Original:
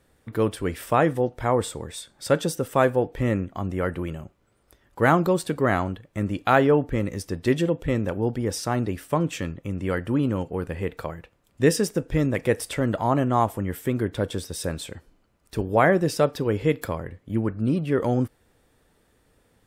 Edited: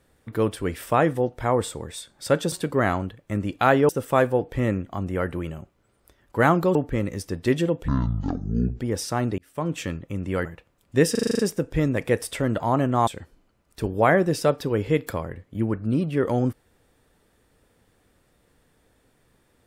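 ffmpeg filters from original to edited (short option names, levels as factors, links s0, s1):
-filter_complex "[0:a]asplit=16[s0][s1][s2][s3][s4][s5][s6][s7][s8][s9][s10][s11][s12][s13][s14][s15];[s0]atrim=end=2.522[s16];[s1]atrim=start=5.378:end=6.752[s17];[s2]atrim=start=2.518:end=5.382[s18];[s3]atrim=start=6.748:end=7.884[s19];[s4]atrim=start=7.88:end=8.35,asetpts=PTS-STARTPTS,asetrate=22491,aresample=44100,atrim=end_sample=40641,asetpts=PTS-STARTPTS[s20];[s5]atrim=start=8.346:end=8.93,asetpts=PTS-STARTPTS,afade=t=out:st=0.58:d=0.004:c=hsin[s21];[s6]atrim=start=8.93:end=10.002,asetpts=PTS-STARTPTS,afade=t=in:d=0.41[s22];[s7]atrim=start=11.108:end=11.812[s23];[s8]atrim=start=11.768:end=11.812[s24];[s9]atrim=start=11.768:end=11.812[s25];[s10]atrim=start=11.768:end=11.812[s26];[s11]atrim=start=11.768:end=11.812[s27];[s12]atrim=start=11.768:end=11.812[s28];[s13]atrim=start=11.768:end=11.812[s29];[s14]atrim=start=11.768:end=13.452[s30];[s15]atrim=start=14.818[s31];[s16][s17]acrossfade=d=0.004:c1=hsin:c2=hsin[s32];[s32][s18]acrossfade=d=0.004:c1=hsin:c2=hsin[s33];[s33][s19]acrossfade=d=0.004:c1=hsin:c2=hsin[s34];[s34][s20]acrossfade=d=0.004:c1=hsin:c2=hsin[s35];[s21][s22]concat=n=2:v=0:a=1[s36];[s35][s36]acrossfade=d=0.004:c1=hsin:c2=hsin[s37];[s37][s23]acrossfade=d=0.004:c1=hsin:c2=hsin[s38];[s38][s24]acrossfade=d=0.004:c1=hsin:c2=hsin[s39];[s39][s25]acrossfade=d=0.004:c1=hsin:c2=hsin[s40];[s40][s26]acrossfade=d=0.004:c1=hsin:c2=hsin[s41];[s41][s27]acrossfade=d=0.004:c1=hsin:c2=hsin[s42];[s42][s28]acrossfade=d=0.004:c1=hsin:c2=hsin[s43];[s43][s29]acrossfade=d=0.004:c1=hsin:c2=hsin[s44];[s44][s30]acrossfade=d=0.004:c1=hsin:c2=hsin[s45];[s45][s31]acrossfade=d=0.004:c1=hsin:c2=hsin"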